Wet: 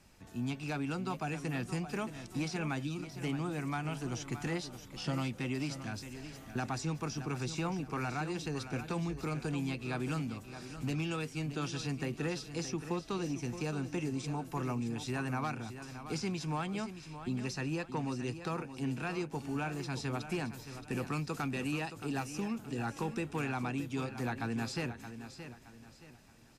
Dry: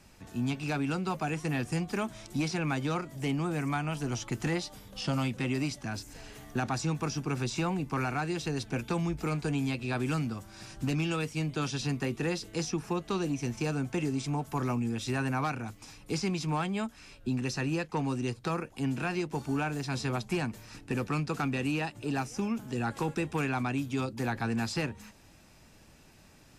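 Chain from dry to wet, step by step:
0:02.82–0:03.03: gain on a spectral selection 370–2,300 Hz −18 dB
0:20.45–0:22.55: high-shelf EQ 7,500 Hz +7 dB
repeating echo 622 ms, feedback 35%, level −11 dB
level −5 dB

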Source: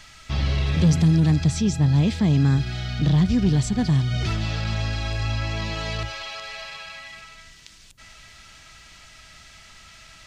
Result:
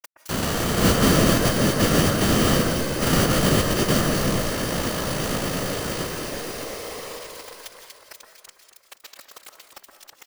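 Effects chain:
samples sorted by size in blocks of 256 samples
low-shelf EQ 97 Hz +9.5 dB
comb filter 6.4 ms, depth 46%
centre clipping without the shift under −31 dBFS
bass and treble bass −11 dB, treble +5 dB
delay that swaps between a low-pass and a high-pass 120 ms, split 2,000 Hz, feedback 74%, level −5 dB
random phases in short frames
formants moved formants −2 semitones
convolution reverb RT60 0.90 s, pre-delay 120 ms, DRR 8 dB
one half of a high-frequency compander encoder only

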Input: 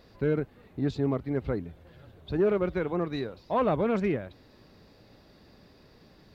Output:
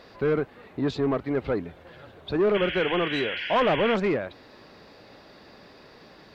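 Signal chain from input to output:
mid-hump overdrive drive 17 dB, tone 2,700 Hz, clips at −16 dBFS
sound drawn into the spectrogram noise, 0:02.54–0:03.95, 1,400–3,400 Hz −34 dBFS
level +1 dB

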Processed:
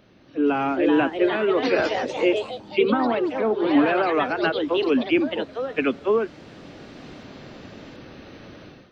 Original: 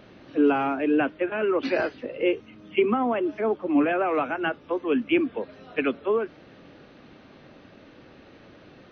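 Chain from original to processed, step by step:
delay with pitch and tempo change per echo 463 ms, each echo +3 semitones, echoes 3, each echo −6 dB
bass and treble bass +3 dB, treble +6 dB
automatic gain control gain up to 13.5 dB
level −7 dB

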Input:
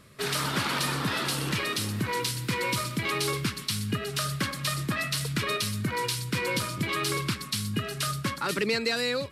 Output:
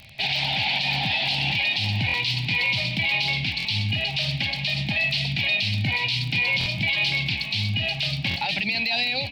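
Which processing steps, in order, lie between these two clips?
drawn EQ curve 110 Hz 0 dB, 160 Hz −6 dB, 260 Hz −10 dB, 420 Hz −24 dB, 790 Hz +10 dB, 1,200 Hz −30 dB, 2,400 Hz +10 dB, 4,500 Hz +3 dB, 7,000 Hz −20 dB, 9,900 Hz −29 dB
brickwall limiter −23 dBFS, peak gain reduction 11.5 dB
surface crackle 30 per second −38 dBFS
echo with shifted repeats 495 ms, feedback 45%, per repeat +51 Hz, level −12.5 dB
buffer that repeats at 0:02.07/0:03.58/0:06.59/0:08.29, samples 1,024, times 2
level +8 dB

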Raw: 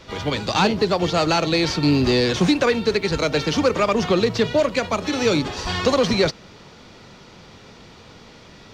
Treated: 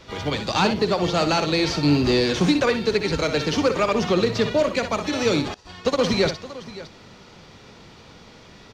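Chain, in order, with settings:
multi-tap delay 62/570 ms −9.5/−16.5 dB
0:05.54–0:05.99: expander for the loud parts 2.5 to 1, over −29 dBFS
level −2 dB

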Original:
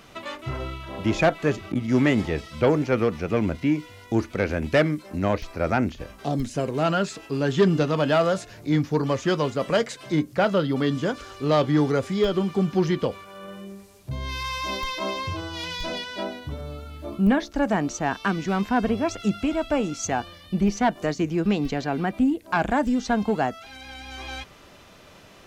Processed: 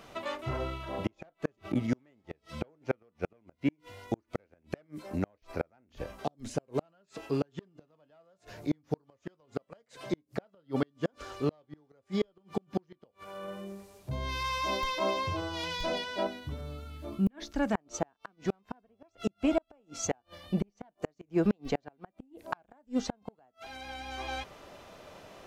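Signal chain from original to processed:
parametric band 650 Hz +6 dB 1.6 octaves, from 0:16.27 −3 dB, from 0:17.75 +8 dB
gate with flip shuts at −12 dBFS, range −41 dB
level −5 dB

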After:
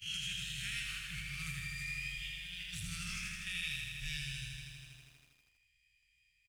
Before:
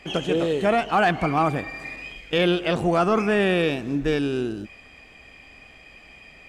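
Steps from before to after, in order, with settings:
peak hold with a rise ahead of every peak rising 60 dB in 0.44 s
inverse Chebyshev band-stop filter 260–970 Hz, stop band 50 dB
first-order pre-emphasis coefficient 0.9
noise gate −51 dBFS, range −17 dB
tilt shelving filter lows +5.5 dB, about 1,100 Hz
brickwall limiter −32.5 dBFS, peak gain reduction 7.5 dB
0:00.87–0:03.47: compressor whose output falls as the input rises −48 dBFS, ratio −0.5
single-tap delay 487 ms −15 dB
feedback echo at a low word length 80 ms, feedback 80%, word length 12 bits, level −4.5 dB
level +3 dB

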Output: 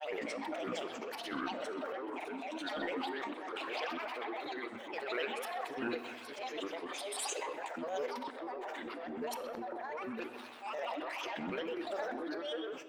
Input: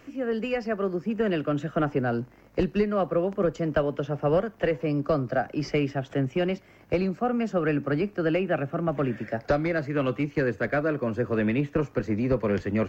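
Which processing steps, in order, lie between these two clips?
played backwards from end to start
elliptic high-pass filter 440 Hz, stop band 40 dB
brickwall limiter −22.5 dBFS, peak gain reduction 9 dB
compressor whose output falls as the input rises −38 dBFS, ratio −1
granular cloud, pitch spread up and down by 12 semitones
transient designer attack −11 dB, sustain +3 dB
echo through a band-pass that steps 128 ms, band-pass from 3,000 Hz, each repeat −0.7 octaves, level −7.5 dB
rectangular room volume 1,300 cubic metres, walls mixed, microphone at 0.52 metres
level +1 dB

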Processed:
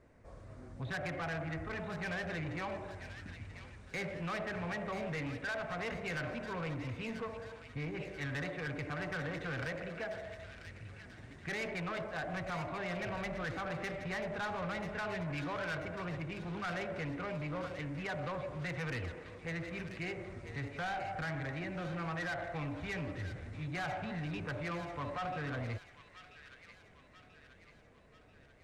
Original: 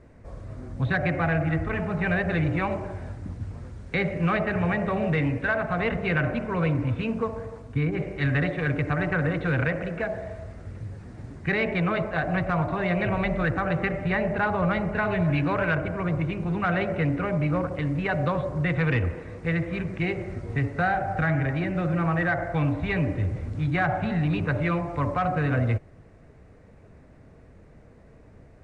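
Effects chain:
low-shelf EQ 350 Hz −7 dB
soft clipping −27 dBFS, distortion −11 dB
on a send: delay with a high-pass on its return 987 ms, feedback 52%, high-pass 2,000 Hz, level −7.5 dB
on the sum: level −7 dB

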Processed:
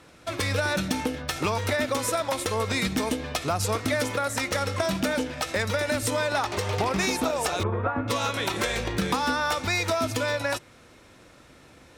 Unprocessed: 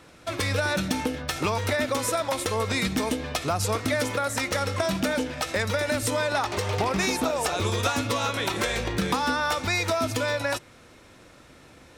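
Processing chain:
harmonic generator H 3 −18 dB, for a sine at −12 dBFS
in parallel at −7.5 dB: wave folding −21 dBFS
0:07.63–0:08.08: on the sum: low-pass filter 1,600 Hz 24 dB per octave

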